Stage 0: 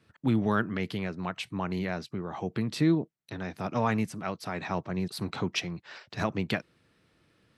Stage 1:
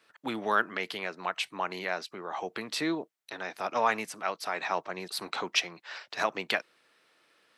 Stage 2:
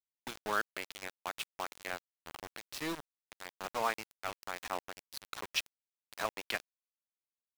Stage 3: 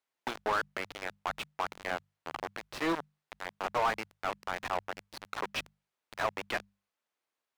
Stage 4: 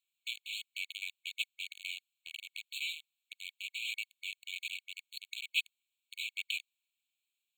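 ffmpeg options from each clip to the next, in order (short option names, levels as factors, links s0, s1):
-af "highpass=590,volume=1.68"
-af "aeval=exprs='val(0)*gte(abs(val(0)),0.0398)':c=same,volume=0.473"
-filter_complex "[0:a]asplit=2[s0][s1];[s1]highpass=f=720:p=1,volume=17.8,asoftclip=type=tanh:threshold=0.141[s2];[s0][s2]amix=inputs=2:normalize=0,lowpass=f=1100:p=1,volume=0.501,bandreject=f=50:t=h:w=6,bandreject=f=100:t=h:w=6,bandreject=f=150:t=h:w=6,bandreject=f=200:t=h:w=6"
-af "afftfilt=real='re*eq(mod(floor(b*sr/1024/2200),2),1)':imag='im*eq(mod(floor(b*sr/1024/2200),2),1)':win_size=1024:overlap=0.75,volume=1.88"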